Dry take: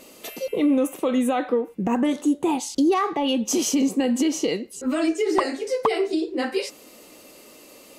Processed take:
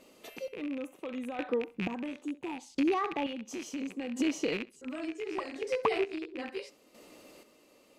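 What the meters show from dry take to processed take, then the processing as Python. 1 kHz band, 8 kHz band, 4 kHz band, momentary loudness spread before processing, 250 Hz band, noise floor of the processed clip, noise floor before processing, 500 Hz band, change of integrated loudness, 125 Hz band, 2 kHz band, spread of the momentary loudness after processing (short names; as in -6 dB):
-10.5 dB, -18.5 dB, -12.5 dB, 6 LU, -13.0 dB, -63 dBFS, -48 dBFS, -10.5 dB, -11.5 dB, -8.5 dB, -6.5 dB, 12 LU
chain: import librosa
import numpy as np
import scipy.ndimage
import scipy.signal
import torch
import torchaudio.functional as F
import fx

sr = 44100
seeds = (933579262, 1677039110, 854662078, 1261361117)

y = fx.rattle_buzz(x, sr, strikes_db=-37.0, level_db=-16.0)
y = fx.lowpass(y, sr, hz=4000.0, slope=6)
y = fx.rider(y, sr, range_db=10, speed_s=2.0)
y = fx.chopper(y, sr, hz=0.72, depth_pct=60, duty_pct=35)
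y = fx.echo_feedback(y, sr, ms=66, feedback_pct=24, wet_db=-21.5)
y = F.gain(torch.from_numpy(y), -8.0).numpy()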